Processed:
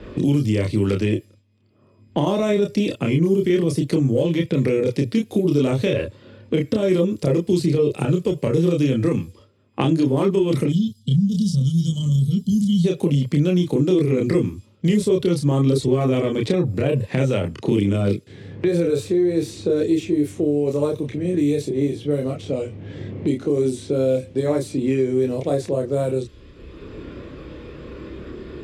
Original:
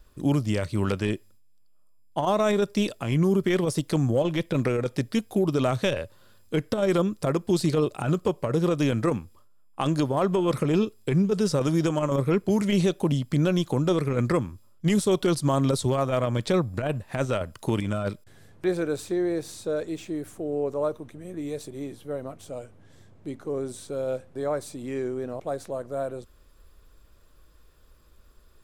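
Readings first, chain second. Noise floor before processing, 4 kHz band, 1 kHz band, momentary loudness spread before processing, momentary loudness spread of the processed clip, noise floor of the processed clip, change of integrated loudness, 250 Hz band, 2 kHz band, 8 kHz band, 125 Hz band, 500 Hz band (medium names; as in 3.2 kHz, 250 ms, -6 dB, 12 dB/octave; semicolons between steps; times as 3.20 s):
-54 dBFS, +3.0 dB, -2.0 dB, 11 LU, 9 LU, -53 dBFS, +5.5 dB, +6.5 dB, +1.5 dB, +0.5 dB, +6.5 dB, +5.5 dB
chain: treble shelf 2.7 kHz -9 dB; time-frequency box 10.69–12.85 s, 250–2900 Hz -29 dB; high-order bell 1 kHz -11.5 dB; in parallel at -3 dB: compressor with a negative ratio -31 dBFS; on the sum: high-pass 120 Hz 12 dB/octave; level-controlled noise filter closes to 2.1 kHz, open at -23.5 dBFS; chorus voices 6, 0.13 Hz, delay 29 ms, depth 1.9 ms; three bands compressed up and down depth 70%; trim +8 dB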